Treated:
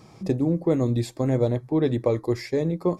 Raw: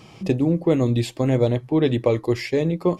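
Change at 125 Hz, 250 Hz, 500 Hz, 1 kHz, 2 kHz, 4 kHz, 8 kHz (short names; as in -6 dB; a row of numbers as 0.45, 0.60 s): -3.0, -3.0, -3.0, -3.5, -7.0, -7.0, -3.5 dB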